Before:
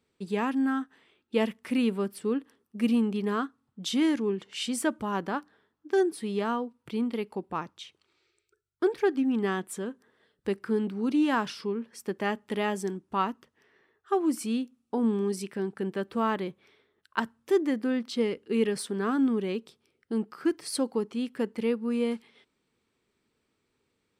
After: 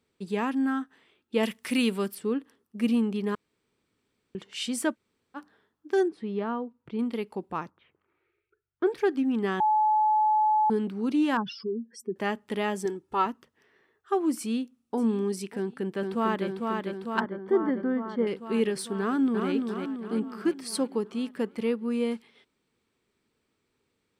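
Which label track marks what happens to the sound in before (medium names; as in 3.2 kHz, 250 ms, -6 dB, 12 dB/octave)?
1.430000	2.150000	treble shelf 2.2 kHz +11.5 dB
3.350000	4.350000	room tone
4.930000	5.370000	room tone, crossfade 0.06 s
6.080000	6.990000	tape spacing loss at 10 kHz 28 dB
7.690000	8.860000	low-pass 1.6 kHz -> 3.2 kHz 24 dB/octave
9.600000	10.700000	bleep 858 Hz -19.5 dBFS
11.370000	12.160000	spectral contrast enhancement exponent 2.6
12.850000	13.260000	comb 2.3 ms
14.380000	15.000000	echo throw 590 ms, feedback 30%, level -16.5 dB
15.570000	16.460000	echo throw 450 ms, feedback 75%, level -3.5 dB
17.200000	18.270000	Savitzky-Golay filter over 41 samples
19.000000	19.510000	echo throw 340 ms, feedback 55%, level -4.5 dB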